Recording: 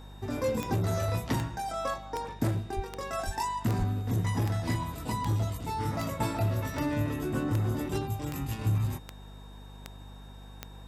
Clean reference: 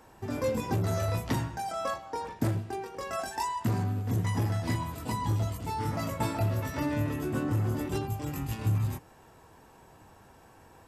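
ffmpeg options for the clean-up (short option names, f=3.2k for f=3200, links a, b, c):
-filter_complex "[0:a]adeclick=t=4,bandreject=f=49.9:t=h:w=4,bandreject=f=99.8:t=h:w=4,bandreject=f=149.7:t=h:w=4,bandreject=f=199.6:t=h:w=4,bandreject=f=249.5:t=h:w=4,bandreject=f=3.7k:w=30,asplit=3[a][b][c];[a]afade=t=out:st=2.75:d=0.02[d];[b]highpass=f=140:w=0.5412,highpass=f=140:w=1.3066,afade=t=in:st=2.75:d=0.02,afade=t=out:st=2.87:d=0.02[e];[c]afade=t=in:st=2.87:d=0.02[f];[d][e][f]amix=inputs=3:normalize=0,asplit=3[g][h][i];[g]afade=t=out:st=3.25:d=0.02[j];[h]highpass=f=140:w=0.5412,highpass=f=140:w=1.3066,afade=t=in:st=3.25:d=0.02,afade=t=out:st=3.37:d=0.02[k];[i]afade=t=in:st=3.37:d=0.02[l];[j][k][l]amix=inputs=3:normalize=0,asplit=3[m][n][o];[m]afade=t=out:st=3.78:d=0.02[p];[n]highpass=f=140:w=0.5412,highpass=f=140:w=1.3066,afade=t=in:st=3.78:d=0.02,afade=t=out:st=3.9:d=0.02[q];[o]afade=t=in:st=3.9:d=0.02[r];[p][q][r]amix=inputs=3:normalize=0"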